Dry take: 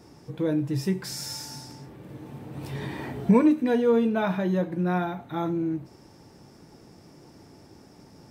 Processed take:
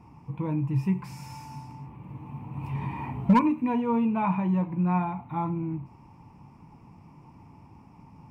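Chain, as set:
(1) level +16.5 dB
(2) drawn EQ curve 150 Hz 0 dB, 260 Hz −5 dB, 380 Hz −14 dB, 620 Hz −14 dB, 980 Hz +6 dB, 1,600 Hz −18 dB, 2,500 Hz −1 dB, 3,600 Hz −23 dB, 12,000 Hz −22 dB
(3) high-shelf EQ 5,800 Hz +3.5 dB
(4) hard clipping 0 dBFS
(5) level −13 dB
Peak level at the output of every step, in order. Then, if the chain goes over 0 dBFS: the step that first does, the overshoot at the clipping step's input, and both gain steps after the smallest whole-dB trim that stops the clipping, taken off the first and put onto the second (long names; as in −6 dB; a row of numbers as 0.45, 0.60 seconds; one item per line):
+7.5, +5.5, +5.5, 0.0, −13.0 dBFS
step 1, 5.5 dB
step 1 +10.5 dB, step 5 −7 dB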